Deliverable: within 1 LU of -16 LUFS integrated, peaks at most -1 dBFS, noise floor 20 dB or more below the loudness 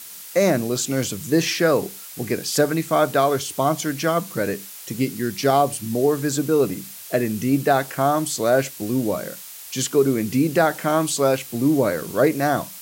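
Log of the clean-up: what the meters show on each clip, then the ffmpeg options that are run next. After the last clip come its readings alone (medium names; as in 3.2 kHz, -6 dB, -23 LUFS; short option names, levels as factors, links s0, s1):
noise floor -39 dBFS; noise floor target -42 dBFS; loudness -21.5 LUFS; peak level -4.5 dBFS; loudness target -16.0 LUFS
-> -af "afftdn=nr=6:nf=-39"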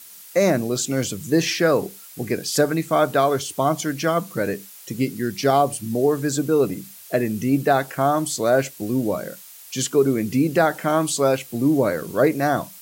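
noise floor -43 dBFS; loudness -21.5 LUFS; peak level -5.0 dBFS; loudness target -16.0 LUFS
-> -af "volume=1.88,alimiter=limit=0.891:level=0:latency=1"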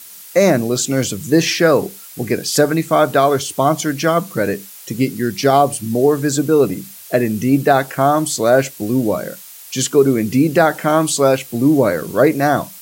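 loudness -16.0 LUFS; peak level -1.0 dBFS; noise floor -38 dBFS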